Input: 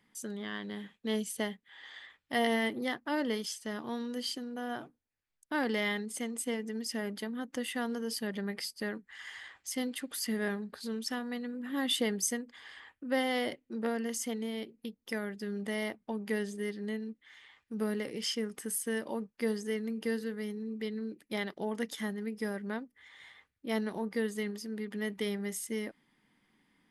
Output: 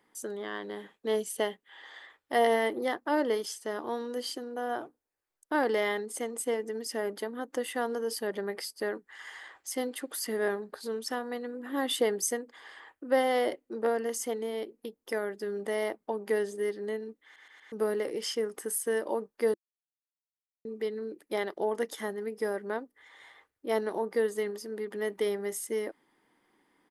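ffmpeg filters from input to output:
-filter_complex "[0:a]asettb=1/sr,asplit=3[a][b][c];[a]atrim=end=1.314[d];[b]atrim=start=1.31:end=1.82,asetpts=PTS-STARTPTS,afade=t=in:d=0.004:c=qsin,afade=t=out:st=0.506:d=0.004:c=qsin,equalizer=f=2.9k:w=3.6:g=6[e];[c]atrim=start=1.816[f];[d][e]acrossfade=d=0.004:c1=hsin:c2=qsin[g];[g][f]acrossfade=d=0.004:c1=qsin:c2=hsin,asplit=7[h][i][j][k][l][m][n];[h]atrim=end=17.362[o];[i]atrim=start=17.238:end=17.362[p];[j]atrim=start=17.238:end=17.362[q];[k]atrim=start=17.238:end=17.362[r];[l]atrim=start=17.718:end=19.54,asetpts=PTS-STARTPTS,afade=t=out:st=1.818:d=0.004:c=hsin[s];[m]atrim=start=19.54:end=20.65,asetpts=PTS-STARTPTS,volume=0[t];[n]atrim=start=20.65,asetpts=PTS-STARTPTS,afade=t=in:d=0.004:c=hsin[u];[o][p]acrossfade=d=0.004:c1=hsin:c2=hsin[v];[v][q]acrossfade=d=0.004:c1=hsin:c2=hsin[w];[w][r]acrossfade=d=0.004:c1=hsin:c2=hsin[x];[s][t][u]concat=n=3:v=0:a=1[y];[x][y]acrossfade=d=0.004:c1=hsin:c2=hsin,firequalizer=gain_entry='entry(210,0);entry(340,14);entry(890,13);entry(2400,4);entry(9600,9)':delay=0.05:min_phase=1,volume=-6.5dB"

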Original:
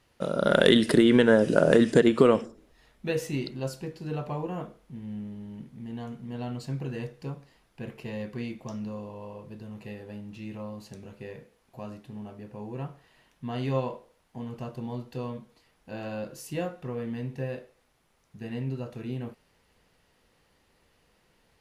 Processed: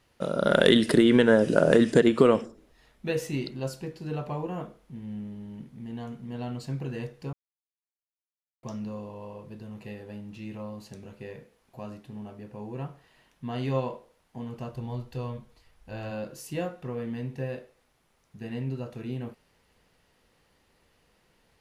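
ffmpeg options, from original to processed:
-filter_complex "[0:a]asplit=3[a][b][c];[a]afade=t=out:st=14.69:d=0.02[d];[b]asubboost=boost=5.5:cutoff=85,afade=t=in:st=14.69:d=0.02,afade=t=out:st=16.1:d=0.02[e];[c]afade=t=in:st=16.1:d=0.02[f];[d][e][f]amix=inputs=3:normalize=0,asplit=3[g][h][i];[g]atrim=end=7.33,asetpts=PTS-STARTPTS,afade=t=out:st=7.326:d=0.004:c=hsin[j];[h]atrim=start=7.33:end=8.63,asetpts=PTS-STARTPTS,volume=0[k];[i]atrim=start=8.63,asetpts=PTS-STARTPTS,afade=t=in:d=0.004:c=hsin[l];[j][k][l]concat=n=3:v=0:a=1"

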